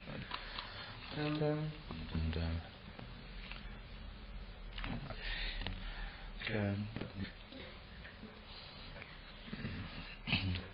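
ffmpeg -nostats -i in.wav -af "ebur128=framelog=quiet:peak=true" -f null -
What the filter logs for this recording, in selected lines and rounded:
Integrated loudness:
  I:         -43.3 LUFS
  Threshold: -53.3 LUFS
Loudness range:
  LRA:         5.0 LU
  Threshold: -64.0 LUFS
  LRA low:   -46.8 LUFS
  LRA high:  -41.7 LUFS
True peak:
  Peak:      -21.6 dBFS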